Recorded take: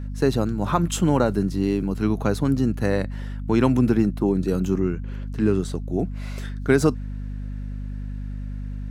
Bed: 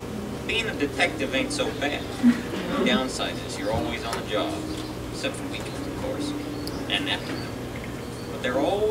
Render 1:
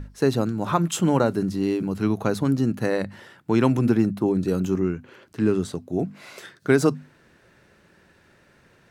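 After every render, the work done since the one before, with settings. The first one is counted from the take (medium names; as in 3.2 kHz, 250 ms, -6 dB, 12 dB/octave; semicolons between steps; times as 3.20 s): hum notches 50/100/150/200/250 Hz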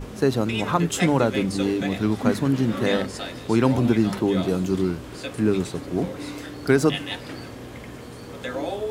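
add bed -5 dB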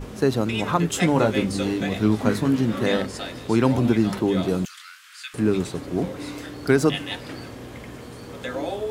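1.14–2.60 s: doubling 19 ms -6 dB; 4.65–5.34 s: steep high-pass 1.3 kHz 48 dB/octave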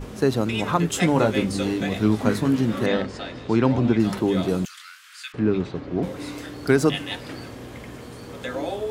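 2.86–4.00 s: distance through air 110 m; 5.32–6.03 s: distance through air 210 m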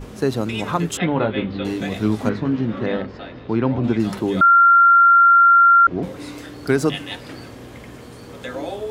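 0.97–1.65 s: elliptic low-pass 3.6 kHz, stop band 80 dB; 2.29–3.84 s: distance through air 230 m; 4.41–5.87 s: bleep 1.38 kHz -8 dBFS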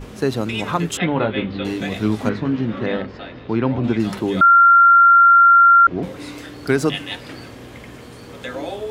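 peaking EQ 2.6 kHz +3 dB 1.6 oct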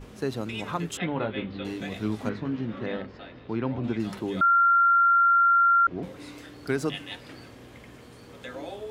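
trim -9.5 dB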